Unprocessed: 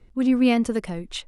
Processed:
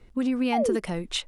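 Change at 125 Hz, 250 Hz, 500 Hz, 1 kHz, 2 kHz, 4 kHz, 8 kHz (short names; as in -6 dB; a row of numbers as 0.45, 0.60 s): -1.0, -6.0, +0.5, +3.0, -3.5, +1.0, +2.0 dB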